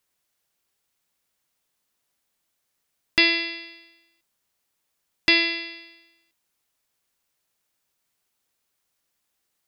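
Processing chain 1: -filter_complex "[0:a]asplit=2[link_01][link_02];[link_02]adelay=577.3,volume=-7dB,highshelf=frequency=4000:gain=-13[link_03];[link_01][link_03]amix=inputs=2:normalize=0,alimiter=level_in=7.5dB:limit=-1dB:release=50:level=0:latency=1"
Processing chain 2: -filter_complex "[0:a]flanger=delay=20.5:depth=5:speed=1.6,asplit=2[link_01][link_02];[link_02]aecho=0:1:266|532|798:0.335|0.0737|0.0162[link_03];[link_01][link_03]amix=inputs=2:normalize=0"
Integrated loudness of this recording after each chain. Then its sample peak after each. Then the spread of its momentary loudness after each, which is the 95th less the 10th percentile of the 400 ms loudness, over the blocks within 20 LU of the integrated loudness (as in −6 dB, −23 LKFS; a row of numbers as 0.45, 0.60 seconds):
−17.0, −24.0 LKFS; −1.0, −7.5 dBFS; 18, 16 LU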